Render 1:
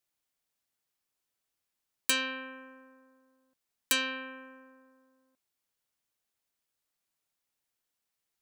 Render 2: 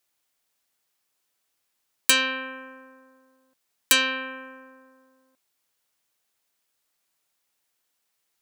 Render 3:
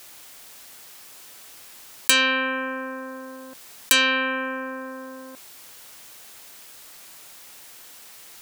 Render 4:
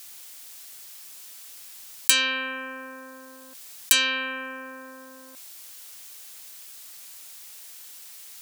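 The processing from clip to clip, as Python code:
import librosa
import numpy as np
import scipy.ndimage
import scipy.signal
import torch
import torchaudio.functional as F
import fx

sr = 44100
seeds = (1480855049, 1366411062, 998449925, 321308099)

y1 = fx.low_shelf(x, sr, hz=240.0, db=-7.5)
y1 = F.gain(torch.from_numpy(y1), 9.0).numpy()
y2 = fx.env_flatten(y1, sr, amount_pct=50)
y3 = fx.high_shelf(y2, sr, hz=2300.0, db=11.5)
y3 = F.gain(torch.from_numpy(y3), -9.5).numpy()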